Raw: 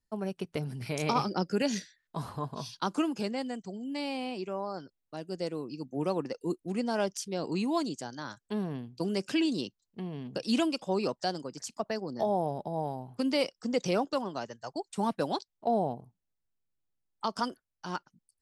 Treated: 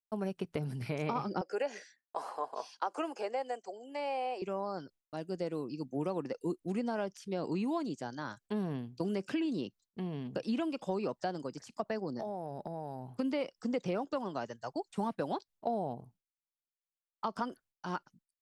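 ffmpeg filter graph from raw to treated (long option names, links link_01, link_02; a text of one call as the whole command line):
ffmpeg -i in.wav -filter_complex "[0:a]asettb=1/sr,asplit=3[link_01][link_02][link_03];[link_01]atrim=end=1.414[link_04];[link_02]atrim=start=1.41:end=4.42,asetpts=PTS-STARTPTS,afade=type=in:duration=0.004:curve=qsin,afade=type=out:start_time=3.006:duration=0.004:curve=qsin,aeval=exprs='val(0)+0.000562*(sin(2*PI*50*n/s)+sin(2*PI*2*50*n/s)/2+sin(2*PI*3*50*n/s)/3+sin(2*PI*4*50*n/s)/4+sin(2*PI*5*50*n/s)/5)':channel_layout=same,highpass=frequency=410:width=0.5412,highpass=frequency=410:width=1.3066,equalizer=frequency=520:width_type=q:width=4:gain=4,equalizer=frequency=770:width_type=q:width=4:gain=7,equalizer=frequency=3700:width_type=q:width=4:gain=-9,lowpass=frequency=10000:width=0.5412,lowpass=frequency=10000:width=1.3066[link_05];[link_03]atrim=start=4.416[link_06];[link_04][link_05]acrossfade=duration=0.004:curve1=hsin:curve2=qsin[link_07];[link_07][link_06]acrossfade=duration=0.004:curve1=qsin:curve2=hsin,asettb=1/sr,asplit=3[link_08][link_09][link_10];[link_08]atrim=end=12.184[link_11];[link_09]atrim=start=12.18:end=13.07,asetpts=PTS-STARTPTS,afade=type=in:duration=0.004:curve=qsin,afade=type=out:start_time=0.886:duration=0.004:curve=qsin,equalizer=frequency=3300:width=5.9:gain=-8.5,acompressor=threshold=-36dB:ratio=5:attack=3.2:release=140:knee=1:detection=peak[link_12];[link_10]atrim=start=13.066[link_13];[link_11][link_12]acrossfade=duration=0.004:curve1=hsin:curve2=qsin[link_14];[link_14][link_13]acrossfade=duration=0.004:curve1=qsin:curve2=hsin,acrossover=split=2700[link_15][link_16];[link_16]acompressor=threshold=-53dB:ratio=4:attack=1:release=60[link_17];[link_15][link_17]amix=inputs=2:normalize=0,agate=range=-33dB:threshold=-56dB:ratio=3:detection=peak,acompressor=threshold=-30dB:ratio=6" out.wav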